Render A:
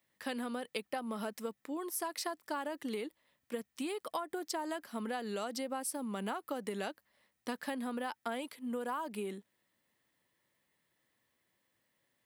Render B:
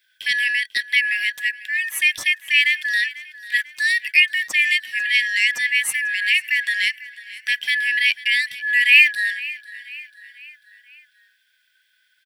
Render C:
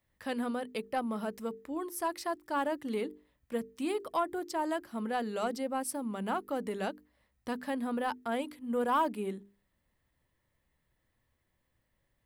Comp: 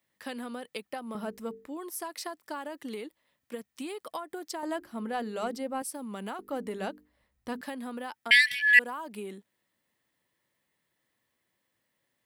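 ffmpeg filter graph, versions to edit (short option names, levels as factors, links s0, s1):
-filter_complex "[2:a]asplit=3[s0][s1][s2];[0:a]asplit=5[s3][s4][s5][s6][s7];[s3]atrim=end=1.152[s8];[s0]atrim=start=1.148:end=1.672[s9];[s4]atrim=start=1.668:end=4.632[s10];[s1]atrim=start=4.628:end=5.822[s11];[s5]atrim=start=5.818:end=6.392[s12];[s2]atrim=start=6.388:end=7.612[s13];[s6]atrim=start=7.608:end=8.312[s14];[1:a]atrim=start=8.308:end=8.792[s15];[s7]atrim=start=8.788[s16];[s8][s9]acrossfade=d=0.004:c1=hsin:c2=hsin[s17];[s17][s10]acrossfade=d=0.004:c1=hsin:c2=hsin[s18];[s18][s11]acrossfade=d=0.004:c1=hsin:c2=hsin[s19];[s19][s12]acrossfade=d=0.004:c1=hsin:c2=hsin[s20];[s20][s13]acrossfade=d=0.004:c1=hsin:c2=hsin[s21];[s21][s14]acrossfade=d=0.004:c1=hsin:c2=hsin[s22];[s22][s15]acrossfade=d=0.004:c1=hsin:c2=hsin[s23];[s23][s16]acrossfade=d=0.004:c1=hsin:c2=hsin"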